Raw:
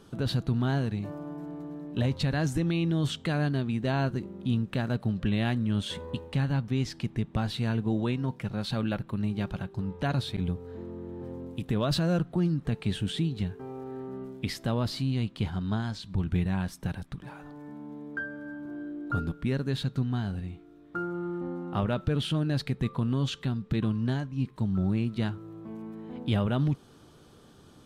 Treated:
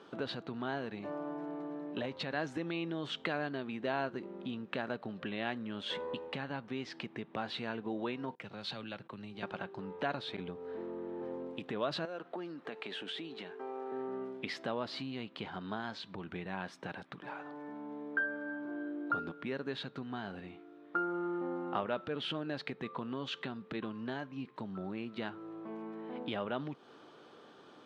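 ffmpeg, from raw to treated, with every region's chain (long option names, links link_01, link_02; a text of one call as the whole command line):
ffmpeg -i in.wav -filter_complex "[0:a]asettb=1/sr,asplit=3[link_01][link_02][link_03];[link_01]atrim=end=8.354[link_04];[link_02]atrim=start=8.35:end=9.43,asetpts=PTS-STARTPTS,afade=type=in:duration=0.004:curve=qsin,afade=type=out:start_time=1.076:duration=0.004:curve=qsin,agate=range=-22dB:threshold=-47dB:ratio=16:release=100:detection=peak,acrossover=split=140|3000[link_05][link_06][link_07];[link_06]acompressor=threshold=-46dB:ratio=2.5:attack=3.2:release=140:knee=2.83:detection=peak[link_08];[link_05][link_08][link_07]amix=inputs=3:normalize=0[link_09];[link_03]atrim=start=9.426[link_10];[link_04][link_09]acrossfade=duration=0.004:curve1=hsin:curve2=qsin[link_11];[link_11][link_10]acrossfade=duration=0.004:curve1=qsin:curve2=hsin,asettb=1/sr,asplit=3[link_12][link_13][link_14];[link_12]atrim=end=12.054[link_15];[link_13]atrim=start=12.05:end=13.92,asetpts=PTS-STARTPTS,afade=type=in:duration=0.004:curve=qsin,afade=type=out:start_time=1.866:duration=0.004:curve=qsin,highpass=320,acompressor=threshold=-37dB:ratio=4:attack=3.2:release=140:knee=1:detection=peak[link_16];[link_14]atrim=start=13.916[link_17];[link_15][link_16]acrossfade=duration=0.004:curve1=hsin:curve2=qsin[link_18];[link_18][link_17]acrossfade=duration=0.004:curve1=qsin:curve2=hsin,lowpass=3100,acompressor=threshold=-31dB:ratio=3,highpass=390,volume=3.5dB" out.wav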